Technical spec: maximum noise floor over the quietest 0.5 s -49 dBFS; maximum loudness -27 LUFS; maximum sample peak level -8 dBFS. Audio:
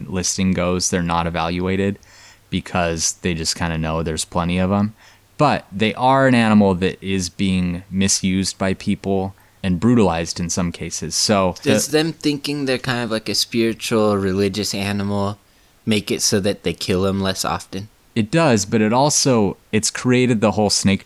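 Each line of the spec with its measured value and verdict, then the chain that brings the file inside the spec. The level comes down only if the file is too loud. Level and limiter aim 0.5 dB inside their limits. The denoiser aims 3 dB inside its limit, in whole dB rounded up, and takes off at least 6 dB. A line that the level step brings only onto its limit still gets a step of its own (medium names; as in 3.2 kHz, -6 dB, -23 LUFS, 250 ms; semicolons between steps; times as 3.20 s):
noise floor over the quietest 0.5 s -53 dBFS: pass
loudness -19.0 LUFS: fail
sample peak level -5.5 dBFS: fail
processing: trim -8.5 dB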